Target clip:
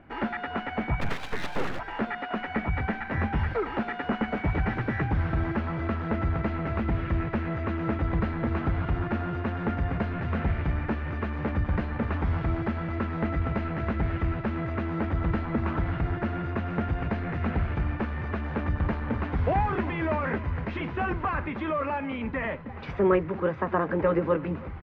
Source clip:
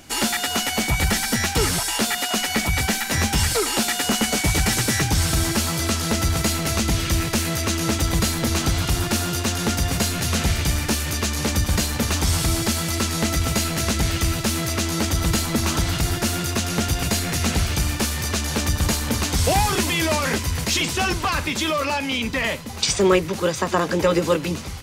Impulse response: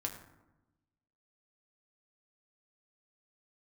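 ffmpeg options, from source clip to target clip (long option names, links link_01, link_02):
-filter_complex "[0:a]lowpass=frequency=1900:width=0.5412,lowpass=frequency=1900:width=1.3066,asplit=3[link_01][link_02][link_03];[link_01]afade=type=out:start_time=1:duration=0.02[link_04];[link_02]aeval=exprs='abs(val(0))':channel_layout=same,afade=type=in:start_time=1:duration=0.02,afade=type=out:start_time=1.78:duration=0.02[link_05];[link_03]afade=type=in:start_time=1.78:duration=0.02[link_06];[link_04][link_05][link_06]amix=inputs=3:normalize=0,aecho=1:1:315:0.0841,volume=-5dB"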